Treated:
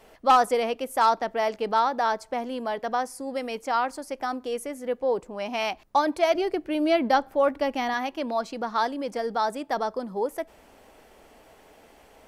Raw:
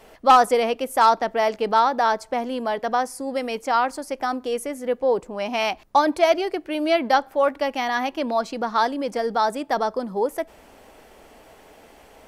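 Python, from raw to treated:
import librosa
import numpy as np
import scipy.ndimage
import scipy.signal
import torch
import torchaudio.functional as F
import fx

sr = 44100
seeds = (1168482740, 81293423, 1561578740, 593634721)

y = fx.low_shelf(x, sr, hz=370.0, db=8.5, at=(6.35, 7.94))
y = y * librosa.db_to_amplitude(-4.5)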